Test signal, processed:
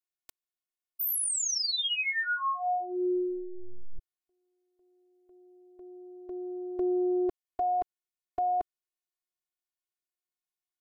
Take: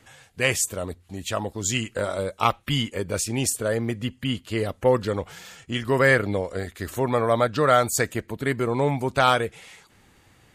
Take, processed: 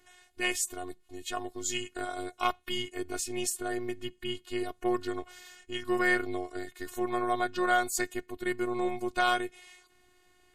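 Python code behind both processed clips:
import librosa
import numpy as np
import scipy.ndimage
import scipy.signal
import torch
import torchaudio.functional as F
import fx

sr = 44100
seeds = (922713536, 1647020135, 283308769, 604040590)

y = fx.robotise(x, sr, hz=360.0)
y = y * librosa.db_to_amplitude(-5.0)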